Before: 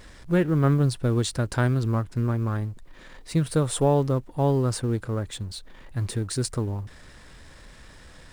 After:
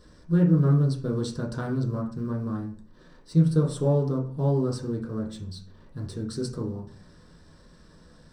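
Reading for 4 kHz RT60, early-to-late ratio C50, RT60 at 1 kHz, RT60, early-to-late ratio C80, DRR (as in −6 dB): 0.40 s, 8.5 dB, 0.45 s, 0.45 s, 13.0 dB, −3.0 dB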